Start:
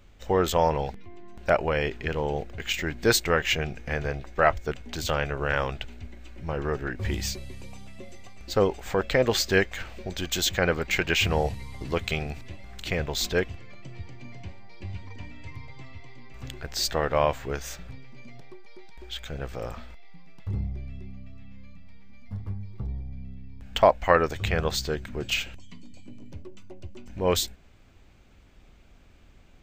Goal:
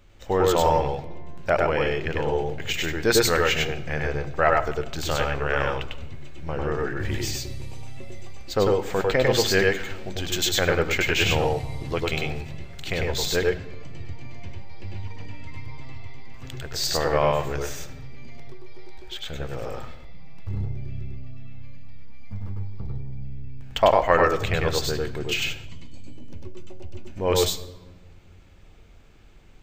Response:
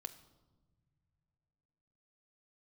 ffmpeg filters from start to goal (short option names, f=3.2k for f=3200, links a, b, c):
-filter_complex "[0:a]bandreject=f=60:t=h:w=6,bandreject=f=120:t=h:w=6,bandreject=f=180:t=h:w=6,bandreject=f=240:t=h:w=6,asplit=2[a][b];[1:a]atrim=start_sample=2205,adelay=99[c];[b][c]afir=irnorm=-1:irlink=0,volume=3dB[d];[a][d]amix=inputs=2:normalize=0"